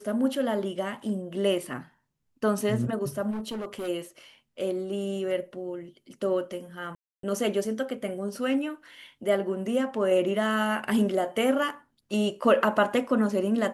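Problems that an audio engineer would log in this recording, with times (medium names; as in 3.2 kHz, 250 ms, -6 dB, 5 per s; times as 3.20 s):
3.30–3.89 s: clipped -30 dBFS
6.95–7.23 s: dropout 283 ms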